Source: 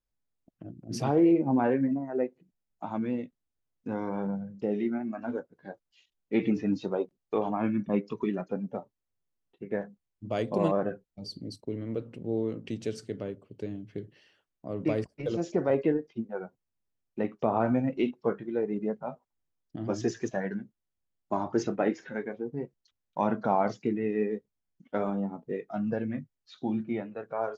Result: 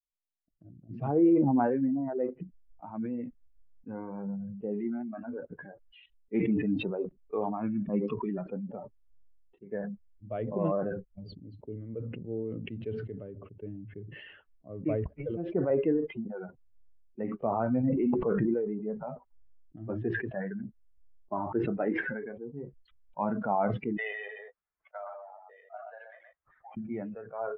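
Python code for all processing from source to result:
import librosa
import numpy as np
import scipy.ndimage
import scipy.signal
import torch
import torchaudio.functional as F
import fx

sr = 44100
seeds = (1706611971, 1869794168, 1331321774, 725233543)

y = fx.chain(x, sr, fx.air_absorb(metres=490.0),
    fx.env_flatten(amount_pct=100), at=(17.83, 18.54))
y = fx.chain(y, sr, fx.ellip_highpass(hz=630.0, order=4, stop_db=60),
    fx.echo_single(ms=124, db=-8.5),
    fx.resample_linear(factor=8), at=(23.97, 26.77))
y = fx.bin_expand(y, sr, power=1.5)
y = scipy.signal.sosfilt(scipy.signal.bessel(8, 1400.0, 'lowpass', norm='mag', fs=sr, output='sos'), y)
y = fx.sustainer(y, sr, db_per_s=31.0)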